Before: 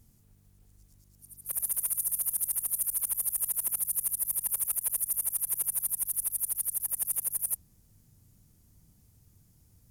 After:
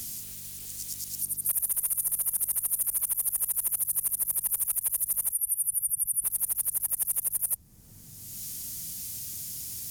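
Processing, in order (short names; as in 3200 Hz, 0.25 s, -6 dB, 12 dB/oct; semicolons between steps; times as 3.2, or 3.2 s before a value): 5.32–6.24 spectral contrast raised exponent 2.5; three-band squash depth 100%; gain +2 dB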